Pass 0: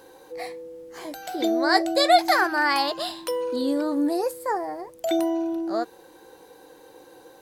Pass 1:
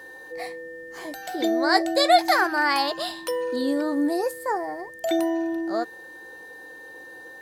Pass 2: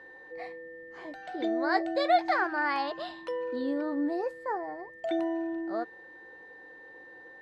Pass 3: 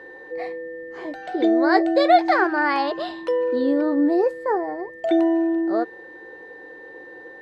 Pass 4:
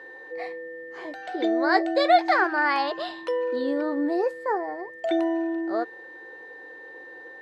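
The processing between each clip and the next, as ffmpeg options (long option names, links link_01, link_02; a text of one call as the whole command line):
ffmpeg -i in.wav -af "aeval=exprs='val(0)+0.00891*sin(2*PI*1800*n/s)':channel_layout=same" out.wav
ffmpeg -i in.wav -af "lowpass=2700,volume=-6.5dB" out.wav
ffmpeg -i in.wav -af "equalizer=frequency=400:width_type=o:width=0.84:gain=8,volume=7dB" out.wav
ffmpeg -i in.wav -af "lowshelf=frequency=460:gain=-10" out.wav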